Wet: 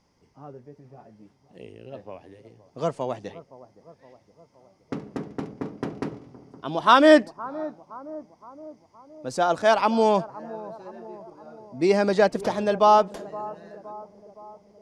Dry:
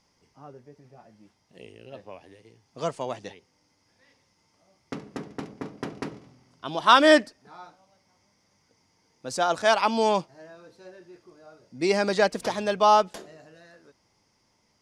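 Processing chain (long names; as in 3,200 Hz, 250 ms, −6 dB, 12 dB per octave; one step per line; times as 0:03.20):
tilt shelving filter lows +4.5 dB, about 1,300 Hz
on a send: bucket-brigade delay 517 ms, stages 4,096, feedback 57%, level −18 dB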